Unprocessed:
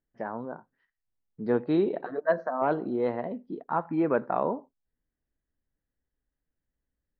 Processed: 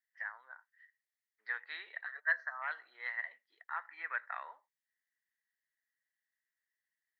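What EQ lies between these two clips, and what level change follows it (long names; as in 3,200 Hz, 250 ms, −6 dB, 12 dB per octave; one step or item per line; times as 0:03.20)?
four-pole ladder high-pass 1,800 Hz, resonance 80%
parametric band 2,500 Hz −7.5 dB 0.64 octaves
+11.0 dB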